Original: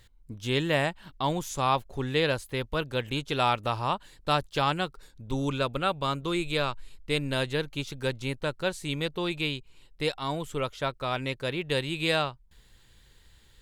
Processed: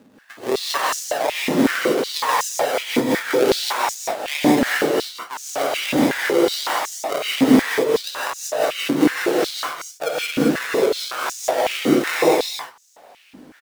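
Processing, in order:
0:05.96–0:07.22: one scale factor per block 3 bits
high-shelf EQ 10,000 Hz +9.5 dB
in parallel at 0 dB: downward compressor, threshold −37 dBFS, peak gain reduction 16.5 dB
on the sum: mains hum 50 Hz, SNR 24 dB
sample-and-hold swept by an LFO 40×, swing 60% 1.3 Hz
on a send: single-tap delay 224 ms −3.5 dB
on the sum: reverb whose tail is shaped and stops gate 200 ms rising, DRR −4.5 dB
high-pass on a step sequencer 5.4 Hz 260–6,400 Hz
level −1 dB

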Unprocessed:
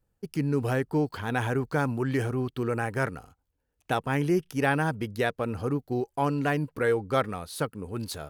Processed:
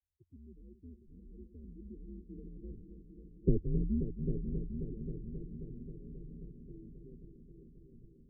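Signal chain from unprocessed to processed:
every frequency bin delayed by itself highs early, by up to 157 ms
source passing by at 0:03.46, 38 m/s, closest 2.5 metres
Butterworth low-pass 520 Hz 72 dB per octave
spectral tilt −3 dB per octave
frequency shifter −91 Hz
on a send: echo machine with several playback heads 267 ms, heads all three, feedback 62%, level −12 dB
on the sum: level +2 dB

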